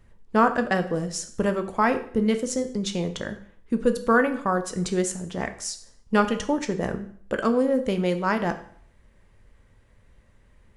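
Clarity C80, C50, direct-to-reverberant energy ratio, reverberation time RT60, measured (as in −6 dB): 15.5 dB, 12.5 dB, 7.5 dB, 0.55 s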